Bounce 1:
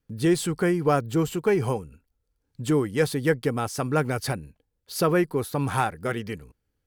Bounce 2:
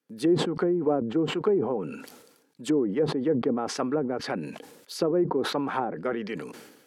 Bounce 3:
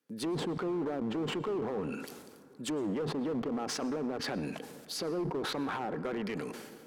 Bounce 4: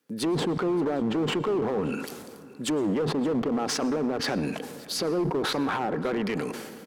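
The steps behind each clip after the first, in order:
high-pass 220 Hz 24 dB/octave; low-pass that closes with the level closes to 500 Hz, closed at -21 dBFS; decay stretcher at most 56 dB/s
peak limiter -25 dBFS, peak gain reduction 11.5 dB; one-sided clip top -32 dBFS, bottom -28.5 dBFS; reverberation RT60 2.7 s, pre-delay 98 ms, DRR 15.5 dB
delay 574 ms -22.5 dB; trim +7.5 dB

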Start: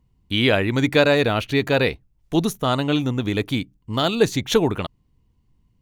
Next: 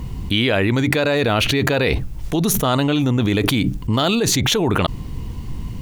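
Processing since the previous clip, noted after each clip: level flattener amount 100%; trim -5.5 dB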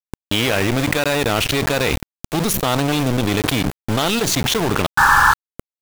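painted sound noise, 4.97–5.34 s, 790–1800 Hz -12 dBFS; small samples zeroed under -17.5 dBFS

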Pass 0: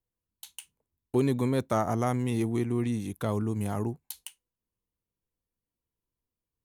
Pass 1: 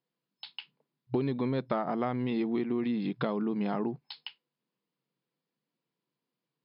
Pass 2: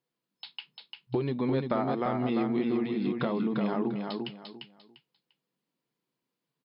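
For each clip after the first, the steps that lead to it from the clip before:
FFT band-pass 120–5200 Hz; compression, threshold -33 dBFS, peak gain reduction 12 dB; trim +6 dB
flange 0.5 Hz, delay 2.2 ms, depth 4.5 ms, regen -69%; feedback delay 347 ms, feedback 24%, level -4.5 dB; trim +5 dB

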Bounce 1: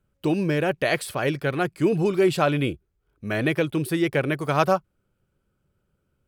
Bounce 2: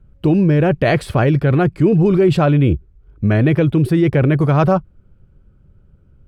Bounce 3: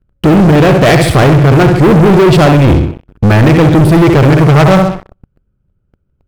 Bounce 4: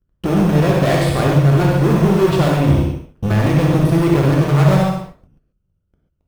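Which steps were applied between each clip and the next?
RIAA curve playback; in parallel at +0.5 dB: compressor with a negative ratio -22 dBFS, ratio -1
on a send: flutter echo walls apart 11 m, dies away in 0.51 s; on the sum: waveshaping leveller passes 5; trim -2 dB
in parallel at -9 dB: sample-and-hold 15×; on the sum: gated-style reverb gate 160 ms flat, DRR -1 dB; trim -14.5 dB

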